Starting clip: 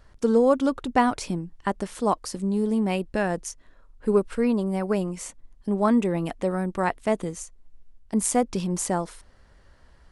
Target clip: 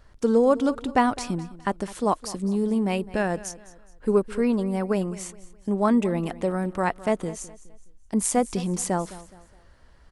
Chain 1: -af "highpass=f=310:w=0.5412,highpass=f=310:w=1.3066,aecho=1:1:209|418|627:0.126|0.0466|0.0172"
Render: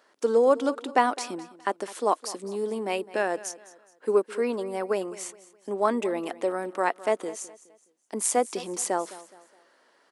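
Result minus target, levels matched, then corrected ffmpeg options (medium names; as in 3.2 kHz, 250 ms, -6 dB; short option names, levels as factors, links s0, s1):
250 Hz band -7.0 dB
-af "aecho=1:1:209|418|627:0.126|0.0466|0.0172"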